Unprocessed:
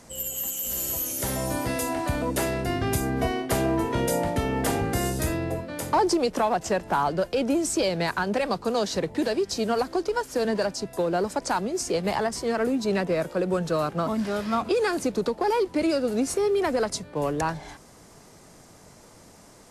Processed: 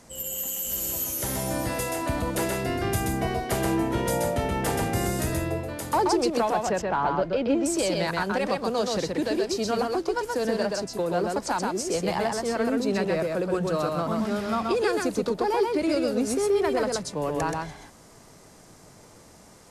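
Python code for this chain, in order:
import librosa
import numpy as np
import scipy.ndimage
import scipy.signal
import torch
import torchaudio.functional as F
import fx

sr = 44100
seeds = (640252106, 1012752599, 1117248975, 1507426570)

y = fx.lowpass(x, sr, hz=3300.0, slope=12, at=(6.69, 7.66))
y = y + 10.0 ** (-3.0 / 20.0) * np.pad(y, (int(128 * sr / 1000.0), 0))[:len(y)]
y = y * librosa.db_to_amplitude(-2.0)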